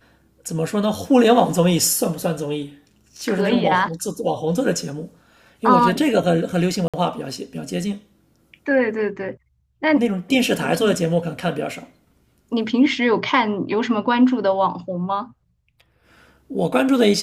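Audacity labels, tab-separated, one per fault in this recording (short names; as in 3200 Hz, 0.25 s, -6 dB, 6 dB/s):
1.240000	1.240000	gap 3.8 ms
6.880000	6.940000	gap 56 ms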